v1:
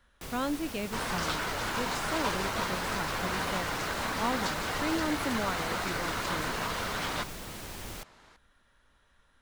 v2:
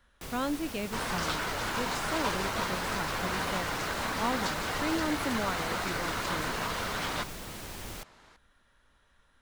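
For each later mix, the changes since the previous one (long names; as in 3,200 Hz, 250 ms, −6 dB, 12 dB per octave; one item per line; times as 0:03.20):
nothing changed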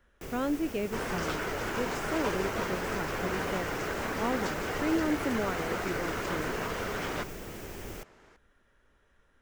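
master: add graphic EQ with 15 bands 400 Hz +7 dB, 1,000 Hz −4 dB, 4,000 Hz −9 dB, 10,000 Hz −7 dB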